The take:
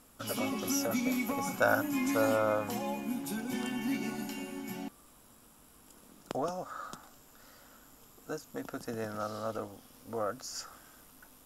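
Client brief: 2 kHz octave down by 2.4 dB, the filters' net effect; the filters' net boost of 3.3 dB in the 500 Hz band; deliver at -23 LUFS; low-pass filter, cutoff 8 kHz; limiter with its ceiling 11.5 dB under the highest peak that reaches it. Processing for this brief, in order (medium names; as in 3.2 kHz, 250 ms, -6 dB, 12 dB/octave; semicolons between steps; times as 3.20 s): low-pass 8 kHz; peaking EQ 500 Hz +4 dB; peaking EQ 2 kHz -4 dB; trim +13.5 dB; peak limiter -12 dBFS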